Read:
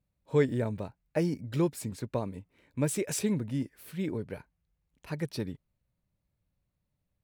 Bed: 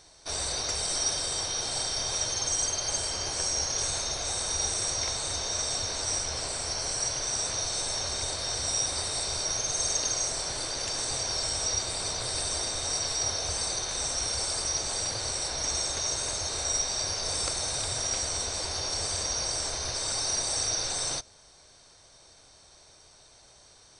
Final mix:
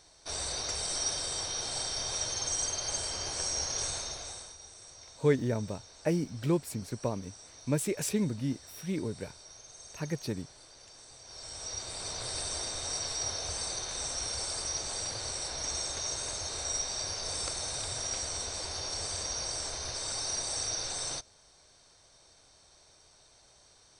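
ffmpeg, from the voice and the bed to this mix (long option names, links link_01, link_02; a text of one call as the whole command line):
ffmpeg -i stem1.wav -i stem2.wav -filter_complex "[0:a]adelay=4900,volume=-0.5dB[link_01];[1:a]volume=12.5dB,afade=type=out:start_time=3.84:duration=0.72:silence=0.133352,afade=type=in:start_time=11.22:duration=1.04:silence=0.149624[link_02];[link_01][link_02]amix=inputs=2:normalize=0" out.wav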